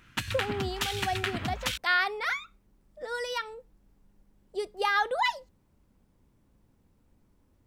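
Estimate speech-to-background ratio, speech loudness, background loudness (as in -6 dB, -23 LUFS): 2.0 dB, -31.0 LUFS, -33.0 LUFS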